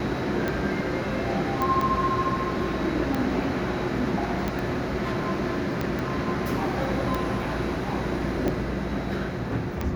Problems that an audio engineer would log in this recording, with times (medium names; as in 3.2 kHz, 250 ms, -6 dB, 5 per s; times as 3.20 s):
tick 45 rpm -14 dBFS
1.62 s: pop
4.59 s: pop
5.99 s: pop -17 dBFS